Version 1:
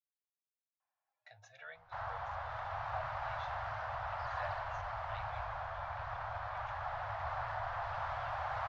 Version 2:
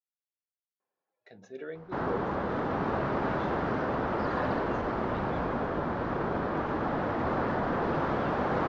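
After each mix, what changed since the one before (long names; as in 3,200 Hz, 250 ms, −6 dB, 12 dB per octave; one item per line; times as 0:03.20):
background +6.0 dB
master: remove elliptic band-stop filter 110–690 Hz, stop band 40 dB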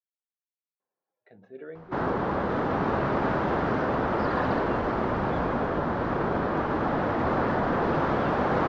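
speech: add high-frequency loss of the air 440 metres
background +4.0 dB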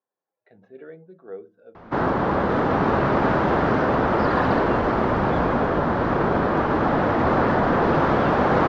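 speech: entry −0.80 s
background +6.0 dB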